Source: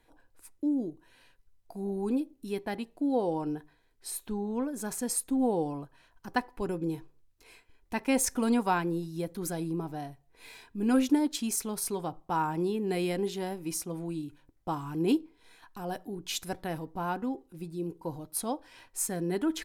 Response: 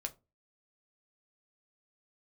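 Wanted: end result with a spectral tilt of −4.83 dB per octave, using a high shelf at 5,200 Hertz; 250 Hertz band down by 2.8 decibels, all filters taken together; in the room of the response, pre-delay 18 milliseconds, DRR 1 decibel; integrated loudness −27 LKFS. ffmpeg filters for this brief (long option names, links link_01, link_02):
-filter_complex "[0:a]equalizer=frequency=250:width_type=o:gain=-3.5,highshelf=frequency=5200:gain=-4,asplit=2[link_01][link_02];[1:a]atrim=start_sample=2205,adelay=18[link_03];[link_02][link_03]afir=irnorm=-1:irlink=0,volume=0dB[link_04];[link_01][link_04]amix=inputs=2:normalize=0,volume=4.5dB"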